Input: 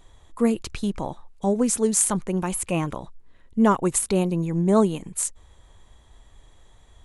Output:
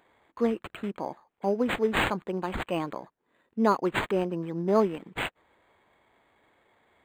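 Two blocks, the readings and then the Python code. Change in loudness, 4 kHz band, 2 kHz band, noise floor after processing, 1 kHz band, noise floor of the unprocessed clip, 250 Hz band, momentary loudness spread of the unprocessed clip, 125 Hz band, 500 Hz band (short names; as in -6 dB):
-5.5 dB, +1.0 dB, +5.5 dB, -78 dBFS, -2.0 dB, -54 dBFS, -7.5 dB, 10 LU, -9.5 dB, -2.5 dB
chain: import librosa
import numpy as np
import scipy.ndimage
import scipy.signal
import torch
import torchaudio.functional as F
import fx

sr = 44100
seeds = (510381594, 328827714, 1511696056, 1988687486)

y = scipy.signal.sosfilt(scipy.signal.butter(2, 280.0, 'highpass', fs=sr, output='sos'), x)
y = np.interp(np.arange(len(y)), np.arange(len(y))[::8], y[::8])
y = y * 10.0 ** (-2.0 / 20.0)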